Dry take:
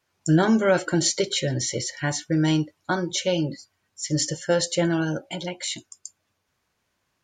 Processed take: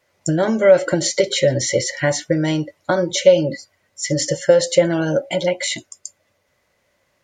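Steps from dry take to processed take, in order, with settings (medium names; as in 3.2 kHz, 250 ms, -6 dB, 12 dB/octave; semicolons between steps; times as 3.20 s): compression 6:1, threshold -23 dBFS, peak gain reduction 9.5 dB; small resonant body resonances 560/2000 Hz, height 13 dB, ringing for 30 ms; trim +6 dB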